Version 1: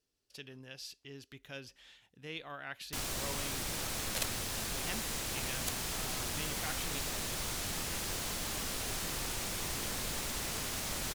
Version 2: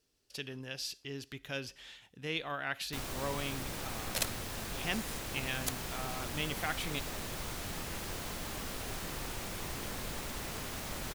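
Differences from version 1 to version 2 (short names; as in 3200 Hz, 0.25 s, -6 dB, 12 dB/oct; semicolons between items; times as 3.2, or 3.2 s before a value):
speech +5.0 dB; second sound: add bell 7500 Hz -7 dB 2.6 oct; reverb: on, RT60 0.50 s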